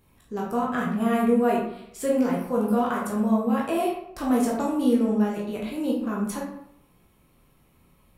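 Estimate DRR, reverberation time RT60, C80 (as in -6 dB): -4.0 dB, 0.75 s, 7.0 dB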